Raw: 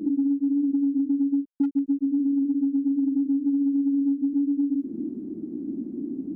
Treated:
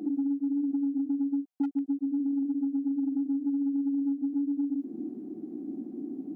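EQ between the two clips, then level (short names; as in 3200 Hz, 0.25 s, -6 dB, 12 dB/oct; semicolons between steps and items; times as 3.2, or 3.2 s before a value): HPF 450 Hz 6 dB/oct; bell 750 Hz +13 dB 0.2 oct; 0.0 dB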